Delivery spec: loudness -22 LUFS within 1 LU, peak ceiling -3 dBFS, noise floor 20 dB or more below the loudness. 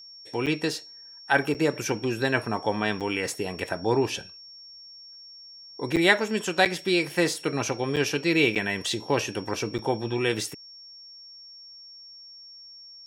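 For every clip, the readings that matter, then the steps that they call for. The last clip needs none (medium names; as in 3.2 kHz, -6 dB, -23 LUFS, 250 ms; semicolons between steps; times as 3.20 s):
dropouts 8; longest dropout 7.5 ms; steady tone 5.5 kHz; tone level -44 dBFS; loudness -26.0 LUFS; peak level -5.0 dBFS; loudness target -22.0 LUFS
-> interpolate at 0.46/1.54/3.00/5.96/6.65/7.96/8.55/9.78 s, 7.5 ms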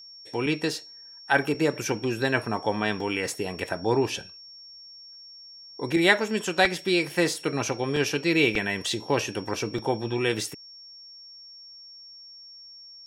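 dropouts 0; steady tone 5.5 kHz; tone level -44 dBFS
-> band-stop 5.5 kHz, Q 30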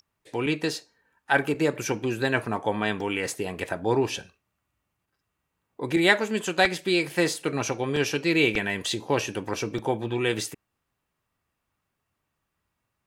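steady tone not found; loudness -26.0 LUFS; peak level -5.0 dBFS; loudness target -22.0 LUFS
-> trim +4 dB; peak limiter -3 dBFS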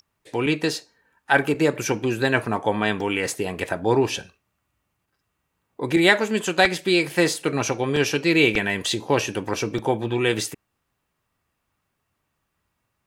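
loudness -22.0 LUFS; peak level -3.0 dBFS; noise floor -77 dBFS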